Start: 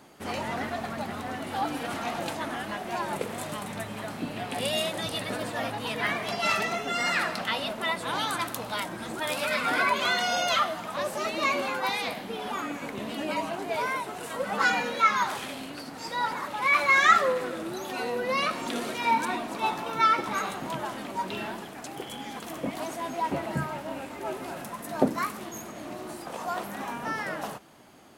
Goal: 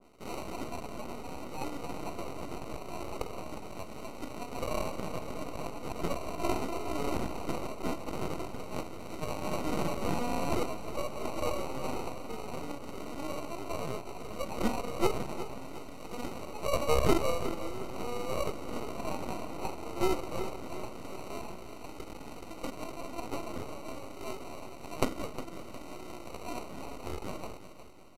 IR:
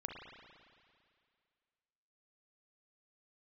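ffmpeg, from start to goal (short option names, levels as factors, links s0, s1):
-filter_complex "[0:a]highpass=f=260:w=0.5412,highpass=f=260:w=1.3066,equalizer=f=940:w=4:g=-14.5,bandreject=f=4800:w=5.7,acrusher=samples=26:mix=1:aa=0.000001,aeval=exprs='max(val(0),0)':c=same,asplit=2[s0][s1];[s1]aecho=0:1:359|718|1077|1436:0.251|0.103|0.0422|0.0173[s2];[s0][s2]amix=inputs=2:normalize=0,aresample=32000,aresample=44100,adynamicequalizer=threshold=0.00447:dfrequency=1700:dqfactor=0.7:tfrequency=1700:tqfactor=0.7:attack=5:release=100:ratio=0.375:range=2:mode=cutabove:tftype=highshelf"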